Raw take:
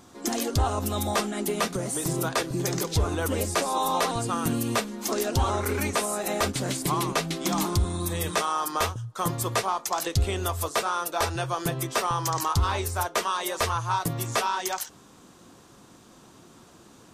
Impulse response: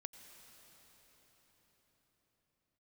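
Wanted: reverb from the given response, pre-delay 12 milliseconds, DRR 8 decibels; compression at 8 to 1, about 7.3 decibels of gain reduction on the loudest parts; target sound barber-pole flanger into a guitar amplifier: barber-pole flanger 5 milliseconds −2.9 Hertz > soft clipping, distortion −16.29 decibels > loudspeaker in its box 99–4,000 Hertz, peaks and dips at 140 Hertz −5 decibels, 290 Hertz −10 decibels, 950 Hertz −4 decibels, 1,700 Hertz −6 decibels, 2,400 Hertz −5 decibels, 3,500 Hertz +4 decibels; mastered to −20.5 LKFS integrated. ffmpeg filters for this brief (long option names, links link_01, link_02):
-filter_complex "[0:a]acompressor=threshold=-26dB:ratio=8,asplit=2[link_01][link_02];[1:a]atrim=start_sample=2205,adelay=12[link_03];[link_02][link_03]afir=irnorm=-1:irlink=0,volume=-3dB[link_04];[link_01][link_04]amix=inputs=2:normalize=0,asplit=2[link_05][link_06];[link_06]adelay=5,afreqshift=-2.9[link_07];[link_05][link_07]amix=inputs=2:normalize=1,asoftclip=threshold=-26.5dB,highpass=99,equalizer=frequency=140:width_type=q:width=4:gain=-5,equalizer=frequency=290:width_type=q:width=4:gain=-10,equalizer=frequency=950:width_type=q:width=4:gain=-4,equalizer=frequency=1700:width_type=q:width=4:gain=-6,equalizer=frequency=2400:width_type=q:width=4:gain=-5,equalizer=frequency=3500:width_type=q:width=4:gain=4,lowpass=frequency=4000:width=0.5412,lowpass=frequency=4000:width=1.3066,volume=17.5dB"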